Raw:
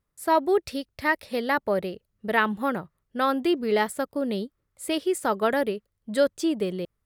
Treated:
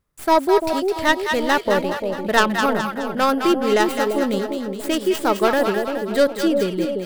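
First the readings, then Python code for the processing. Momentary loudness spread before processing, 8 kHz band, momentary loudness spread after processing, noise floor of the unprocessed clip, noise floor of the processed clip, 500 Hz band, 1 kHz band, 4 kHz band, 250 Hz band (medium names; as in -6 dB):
11 LU, +7.0 dB, 6 LU, -78 dBFS, -34 dBFS, +6.5 dB, +7.0 dB, +9.0 dB, +6.5 dB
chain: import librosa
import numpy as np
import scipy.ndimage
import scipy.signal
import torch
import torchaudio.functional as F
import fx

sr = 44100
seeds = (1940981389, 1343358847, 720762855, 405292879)

y = fx.tracing_dist(x, sr, depth_ms=0.19)
y = fx.echo_split(y, sr, split_hz=720.0, low_ms=344, high_ms=210, feedback_pct=52, wet_db=-5.0)
y = y * 10.0 ** (5.0 / 20.0)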